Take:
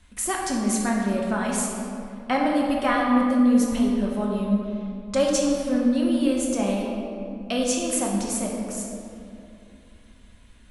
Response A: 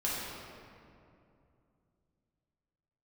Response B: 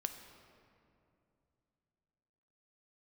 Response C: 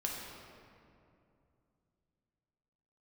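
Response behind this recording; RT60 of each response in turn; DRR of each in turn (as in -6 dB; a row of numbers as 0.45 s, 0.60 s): C; 2.6 s, 2.7 s, 2.6 s; -7.5 dB, 6.5 dB, -2.0 dB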